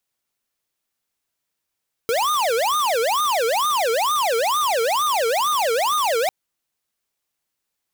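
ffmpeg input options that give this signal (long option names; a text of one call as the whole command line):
ffmpeg -f lavfi -i "aevalsrc='0.1*(2*lt(mod((838.5*t-391.5/(2*PI*2.2)*sin(2*PI*2.2*t)),1),0.5)-1)':duration=4.2:sample_rate=44100" out.wav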